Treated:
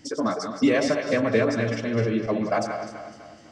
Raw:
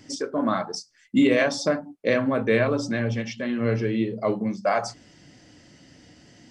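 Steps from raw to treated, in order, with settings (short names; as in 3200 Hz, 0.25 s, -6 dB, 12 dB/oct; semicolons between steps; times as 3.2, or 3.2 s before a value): regenerating reverse delay 0.233 s, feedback 65%, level -8 dB; delay with a stepping band-pass 0.126 s, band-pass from 580 Hz, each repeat 1.4 oct, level -5 dB; time stretch by phase-locked vocoder 0.54×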